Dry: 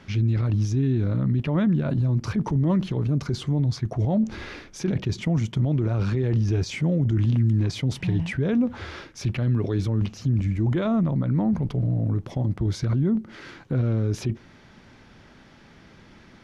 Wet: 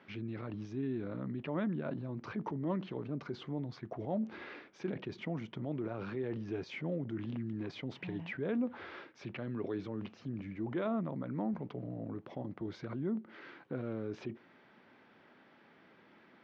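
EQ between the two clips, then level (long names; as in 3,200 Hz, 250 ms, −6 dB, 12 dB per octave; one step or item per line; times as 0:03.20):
band-pass filter 280–3,100 Hz
high-frequency loss of the air 85 metres
−7.5 dB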